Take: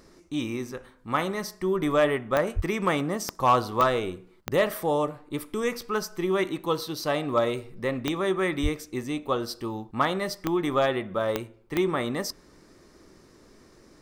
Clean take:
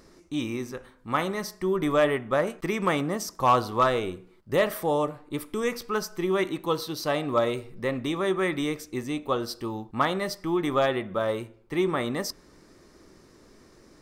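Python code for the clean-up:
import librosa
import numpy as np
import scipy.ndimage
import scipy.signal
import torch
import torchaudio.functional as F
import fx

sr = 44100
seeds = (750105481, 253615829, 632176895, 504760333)

y = fx.fix_declick_ar(x, sr, threshold=10.0)
y = fx.fix_deplosive(y, sr, at_s=(2.55, 8.62))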